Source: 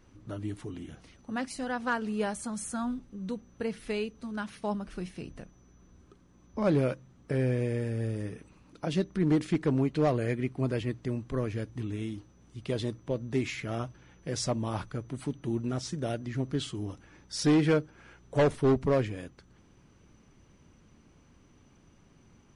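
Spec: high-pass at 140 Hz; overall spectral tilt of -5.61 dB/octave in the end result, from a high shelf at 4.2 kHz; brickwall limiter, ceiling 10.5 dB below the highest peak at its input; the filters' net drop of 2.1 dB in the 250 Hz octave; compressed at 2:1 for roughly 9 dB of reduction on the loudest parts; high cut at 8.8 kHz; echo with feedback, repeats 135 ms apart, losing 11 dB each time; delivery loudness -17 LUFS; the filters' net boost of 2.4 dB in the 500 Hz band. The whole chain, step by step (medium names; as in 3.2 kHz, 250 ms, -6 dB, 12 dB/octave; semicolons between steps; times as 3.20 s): high-pass 140 Hz; low-pass 8.8 kHz; peaking EQ 250 Hz -3.5 dB; peaking EQ 500 Hz +4 dB; treble shelf 4.2 kHz -5.5 dB; compression 2:1, threshold -35 dBFS; peak limiter -30.5 dBFS; feedback delay 135 ms, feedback 28%, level -11 dB; trim +24.5 dB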